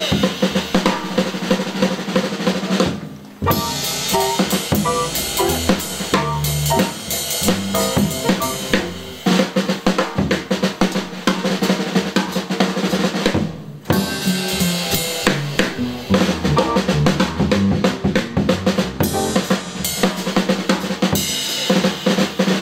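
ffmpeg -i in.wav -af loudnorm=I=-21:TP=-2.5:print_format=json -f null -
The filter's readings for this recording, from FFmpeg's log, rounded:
"input_i" : "-18.5",
"input_tp" : "-1.1",
"input_lra" : "1.6",
"input_thresh" : "-28.5",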